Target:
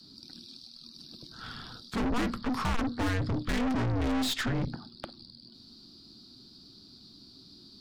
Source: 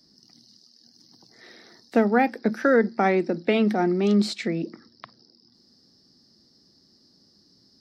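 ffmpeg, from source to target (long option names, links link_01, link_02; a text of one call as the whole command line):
ffmpeg -i in.wav -af "afreqshift=-470,aeval=exprs='(tanh(56.2*val(0)+0.35)-tanh(0.35))/56.2':channel_layout=same,volume=7.5dB" out.wav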